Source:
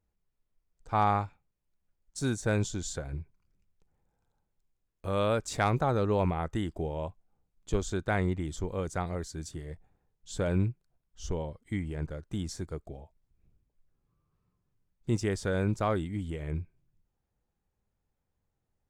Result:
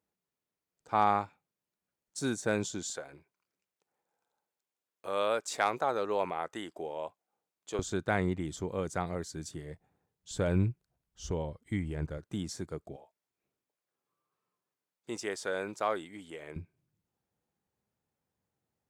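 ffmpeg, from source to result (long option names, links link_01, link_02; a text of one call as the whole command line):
ffmpeg -i in.wav -af "asetnsamples=nb_out_samples=441:pad=0,asendcmd='2.9 highpass f 450;7.79 highpass f 120;10.31 highpass f 58;12.18 highpass f 130;12.96 highpass f 470;16.56 highpass f 130',highpass=200" out.wav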